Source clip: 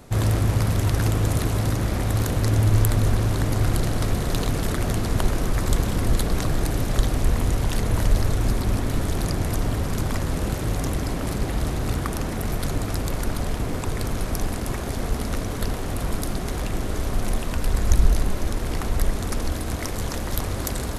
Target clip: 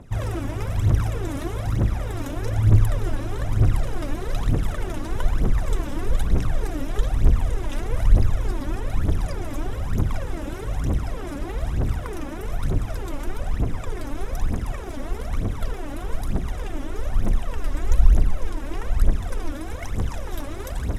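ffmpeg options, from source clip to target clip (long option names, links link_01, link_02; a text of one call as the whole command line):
ffmpeg -i in.wav -af "aemphasis=mode=reproduction:type=cd,bandreject=frequency=4400:width=5.4,aphaser=in_gain=1:out_gain=1:delay=3.7:decay=0.74:speed=1.1:type=triangular,volume=-7dB" out.wav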